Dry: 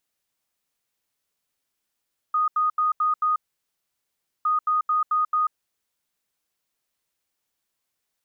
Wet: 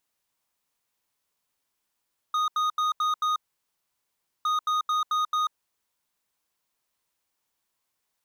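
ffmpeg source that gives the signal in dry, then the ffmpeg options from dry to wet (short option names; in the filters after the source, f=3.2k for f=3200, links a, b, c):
-f lavfi -i "aevalsrc='0.119*sin(2*PI*1240*t)*clip(min(mod(mod(t,2.11),0.22),0.14-mod(mod(t,2.11),0.22))/0.005,0,1)*lt(mod(t,2.11),1.1)':d=4.22:s=44100"
-af "equalizer=f=980:w=3:g=5.5,volume=24dB,asoftclip=hard,volume=-24dB"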